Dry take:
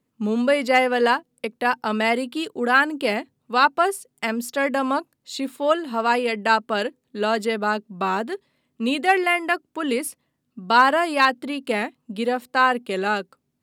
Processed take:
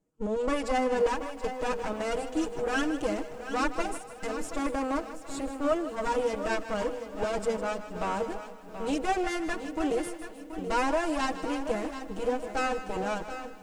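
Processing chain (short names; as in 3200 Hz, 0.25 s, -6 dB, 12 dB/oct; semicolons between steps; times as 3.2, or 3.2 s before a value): minimum comb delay 6.3 ms; ten-band EQ 125 Hz -5 dB, 1000 Hz -4 dB, 2000 Hz -8 dB, 4000 Hz -11 dB, 8000 Hz +8 dB; in parallel at +2.5 dB: limiter -20 dBFS, peak gain reduction 9.5 dB; on the sum: air absorption 84 m; on a send: split-band echo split 530 Hz, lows 0.754 s, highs 0.155 s, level -12.5 dB; on the sum: lo-fi delay 0.729 s, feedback 35%, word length 8-bit, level -11 dB; gain -7.5 dB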